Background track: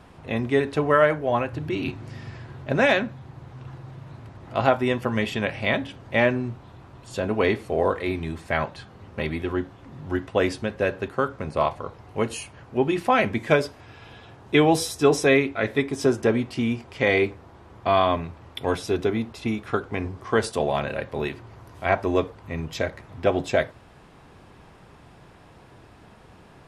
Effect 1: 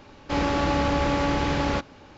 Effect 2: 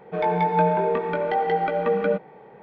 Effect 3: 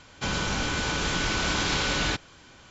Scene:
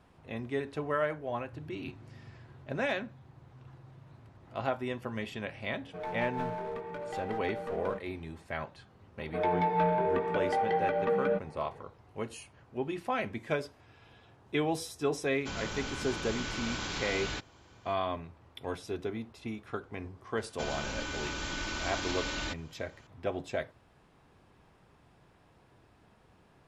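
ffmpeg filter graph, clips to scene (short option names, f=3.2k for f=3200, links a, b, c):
-filter_complex "[2:a]asplit=2[a][b];[3:a]asplit=2[c][d];[0:a]volume=-12.5dB[e];[a]aeval=exprs='clip(val(0),-1,0.0891)':c=same[f];[b]asoftclip=type=tanh:threshold=-14dB[g];[d]aecho=1:1:3.3:0.42[h];[f]atrim=end=2.62,asetpts=PTS-STARTPTS,volume=-14.5dB,afade=t=in:d=0.004:c=hsin,afade=t=out:st=2.616:d=0.004:c=hsin,adelay=256221S[i];[g]atrim=end=2.62,asetpts=PTS-STARTPTS,volume=-5.5dB,afade=t=in:d=0.004:c=hsin,afade=t=out:st=2.616:d=0.004:c=hsin,adelay=9210[j];[c]atrim=end=2.7,asetpts=PTS-STARTPTS,volume=-10.5dB,afade=t=in:d=0.004:c=hsin,afade=t=out:st=2.696:d=0.004:c=hsin,adelay=672084S[k];[h]atrim=end=2.7,asetpts=PTS-STARTPTS,volume=-10.5dB,afade=t=in:d=0.004:c=hsin,afade=t=out:st=2.696:d=0.004:c=hsin,adelay=20370[l];[e][i][j][k][l]amix=inputs=5:normalize=0"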